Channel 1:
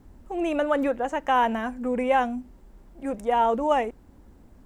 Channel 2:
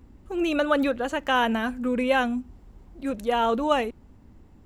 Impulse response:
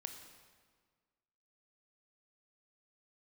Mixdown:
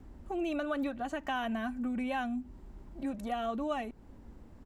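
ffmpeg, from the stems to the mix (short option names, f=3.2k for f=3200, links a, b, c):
-filter_complex "[0:a]highshelf=f=7.9k:g=-10.5,acrossover=split=150[a][b];[b]acompressor=threshold=-30dB:ratio=2[c];[a][c]amix=inputs=2:normalize=0,volume=-2dB[d];[1:a]adelay=2.4,volume=-6dB[e];[d][e]amix=inputs=2:normalize=0,acompressor=threshold=-37dB:ratio=2"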